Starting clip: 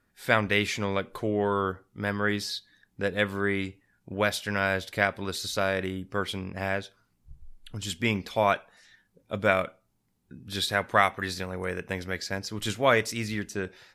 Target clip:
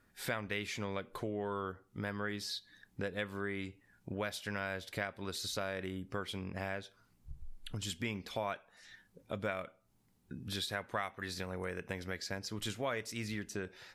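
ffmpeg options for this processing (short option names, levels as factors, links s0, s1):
-af "acompressor=threshold=0.00891:ratio=3,volume=1.19"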